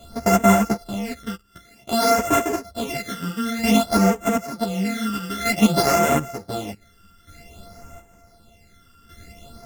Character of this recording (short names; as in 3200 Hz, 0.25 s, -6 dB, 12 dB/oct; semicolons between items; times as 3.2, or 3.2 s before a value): a buzz of ramps at a fixed pitch in blocks of 64 samples; phasing stages 12, 0.53 Hz, lowest notch 700–4300 Hz; chopped level 0.55 Hz, depth 65%, duty 40%; a shimmering, thickened sound